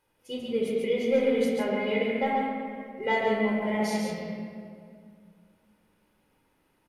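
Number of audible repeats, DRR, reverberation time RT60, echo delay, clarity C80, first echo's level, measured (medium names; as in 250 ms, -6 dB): 1, -3.0 dB, 2.1 s, 140 ms, -0.5 dB, -4.0 dB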